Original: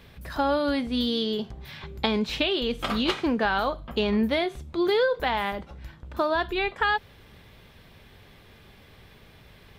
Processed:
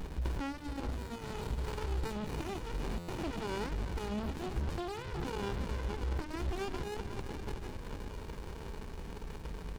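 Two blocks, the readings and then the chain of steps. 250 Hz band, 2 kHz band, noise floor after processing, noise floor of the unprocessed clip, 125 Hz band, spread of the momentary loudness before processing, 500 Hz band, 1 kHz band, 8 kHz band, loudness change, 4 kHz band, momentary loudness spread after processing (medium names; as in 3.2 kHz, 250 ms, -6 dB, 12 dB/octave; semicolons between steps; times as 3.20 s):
-12.5 dB, -16.5 dB, -45 dBFS, -53 dBFS, +2.0 dB, 12 LU, -14.0 dB, -13.5 dB, no reading, -13.5 dB, -18.0 dB, 8 LU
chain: chunks repeated in reverse 314 ms, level -13.5 dB; peaking EQ 5 kHz +10 dB 0.98 oct; two-band feedback delay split 470 Hz, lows 159 ms, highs 369 ms, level -13 dB; touch-sensitive flanger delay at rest 5.2 ms, full sweep at -21 dBFS; comb 2.1 ms, depth 99%; peak limiter -26 dBFS, peak gain reduction 19 dB; compression 2.5:1, threshold -47 dBFS, peak gain reduction 11.5 dB; buffer glitch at 2.98 s, samples 512, times 8; sliding maximum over 65 samples; trim +12 dB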